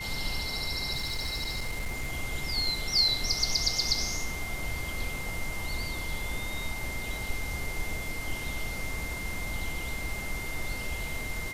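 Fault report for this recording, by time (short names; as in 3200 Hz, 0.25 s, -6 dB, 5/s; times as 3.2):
tone 2100 Hz -37 dBFS
0.95–2.12 clipped -28 dBFS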